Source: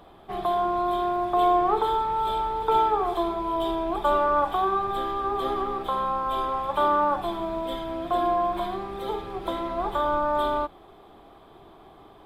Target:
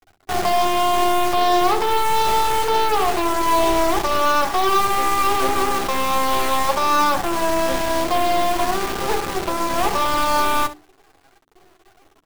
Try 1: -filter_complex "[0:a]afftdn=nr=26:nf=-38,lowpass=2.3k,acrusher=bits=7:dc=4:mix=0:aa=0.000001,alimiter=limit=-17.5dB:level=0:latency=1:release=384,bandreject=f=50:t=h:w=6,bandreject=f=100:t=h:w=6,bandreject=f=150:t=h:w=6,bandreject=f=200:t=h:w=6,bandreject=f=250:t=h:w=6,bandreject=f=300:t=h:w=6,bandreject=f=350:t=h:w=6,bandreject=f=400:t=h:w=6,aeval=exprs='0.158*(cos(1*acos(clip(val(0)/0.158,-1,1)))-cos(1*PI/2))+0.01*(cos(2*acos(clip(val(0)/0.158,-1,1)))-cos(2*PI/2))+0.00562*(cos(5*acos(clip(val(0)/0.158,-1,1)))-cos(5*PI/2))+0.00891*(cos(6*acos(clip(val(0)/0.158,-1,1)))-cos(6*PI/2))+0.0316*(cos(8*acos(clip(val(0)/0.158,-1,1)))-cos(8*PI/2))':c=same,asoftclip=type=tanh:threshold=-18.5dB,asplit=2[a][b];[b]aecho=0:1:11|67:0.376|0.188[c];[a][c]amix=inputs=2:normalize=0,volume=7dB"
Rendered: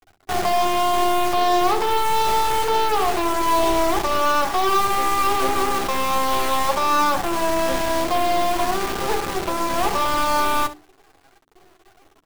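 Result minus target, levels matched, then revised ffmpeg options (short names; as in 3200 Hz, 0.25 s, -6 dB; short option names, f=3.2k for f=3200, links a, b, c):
soft clip: distortion +13 dB
-filter_complex "[0:a]afftdn=nr=26:nf=-38,lowpass=2.3k,acrusher=bits=7:dc=4:mix=0:aa=0.000001,alimiter=limit=-17.5dB:level=0:latency=1:release=384,bandreject=f=50:t=h:w=6,bandreject=f=100:t=h:w=6,bandreject=f=150:t=h:w=6,bandreject=f=200:t=h:w=6,bandreject=f=250:t=h:w=6,bandreject=f=300:t=h:w=6,bandreject=f=350:t=h:w=6,bandreject=f=400:t=h:w=6,aeval=exprs='0.158*(cos(1*acos(clip(val(0)/0.158,-1,1)))-cos(1*PI/2))+0.01*(cos(2*acos(clip(val(0)/0.158,-1,1)))-cos(2*PI/2))+0.00562*(cos(5*acos(clip(val(0)/0.158,-1,1)))-cos(5*PI/2))+0.00891*(cos(6*acos(clip(val(0)/0.158,-1,1)))-cos(6*PI/2))+0.0316*(cos(8*acos(clip(val(0)/0.158,-1,1)))-cos(8*PI/2))':c=same,asoftclip=type=tanh:threshold=-11dB,asplit=2[a][b];[b]aecho=0:1:11|67:0.376|0.188[c];[a][c]amix=inputs=2:normalize=0,volume=7dB"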